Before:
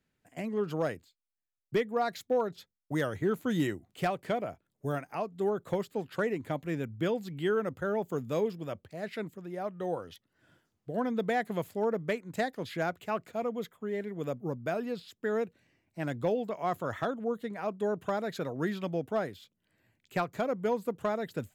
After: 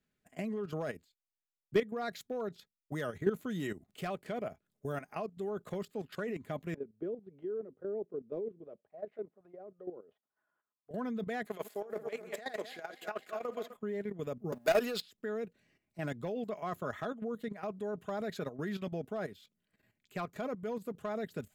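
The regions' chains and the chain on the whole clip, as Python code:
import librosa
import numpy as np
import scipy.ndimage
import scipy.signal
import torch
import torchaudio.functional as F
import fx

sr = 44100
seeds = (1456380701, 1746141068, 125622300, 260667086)

y = fx.chain(x, sr, fx.median_filter(points=9),
    fx.auto_wah(base_hz=370.0, top_hz=1100.0, q=2.9, full_db=-30.5, direction='down'), at=(6.74, 10.91))
y = fx.chain(y, sr, fx.reverse_delay_fb(ms=127, feedback_pct=60, wet_db=-10.5),
    fx.highpass(hz=430.0, slope=12),
    fx.over_compress(threshold_db=-34.0, ratio=-0.5), at=(11.46, 13.76))
y = fx.chain(y, sr, fx.highpass(hz=400.0, slope=12),
    fx.high_shelf(hz=3400.0, db=9.0),
    fx.leveller(passes=3), at=(14.52, 15.01))
y = fx.notch(y, sr, hz=900.0, q=11.0)
y = y + 0.35 * np.pad(y, (int(4.8 * sr / 1000.0), 0))[:len(y)]
y = fx.level_steps(y, sr, step_db=12)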